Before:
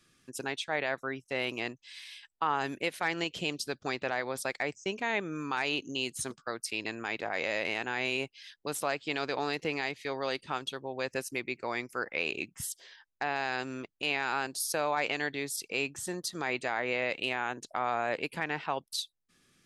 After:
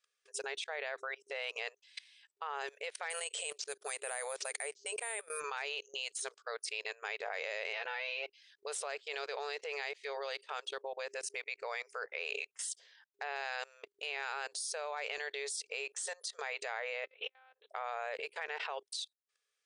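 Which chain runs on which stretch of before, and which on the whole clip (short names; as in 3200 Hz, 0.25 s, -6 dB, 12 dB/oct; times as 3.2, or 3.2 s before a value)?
3.1–5.4 LPF 4700 Hz + careless resampling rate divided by 4×, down none, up zero stuff
7.73–8.34 steep low-pass 6000 Hz 96 dB/oct + comb 5.9 ms, depth 85%
17.04–17.7 monotone LPC vocoder at 8 kHz 260 Hz + notches 50/100/150/200/250/300 Hz + core saturation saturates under 280 Hz
whole clip: FFT band-pass 400–10000 Hz; bell 920 Hz -3.5 dB 0.88 oct; level quantiser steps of 23 dB; gain +6.5 dB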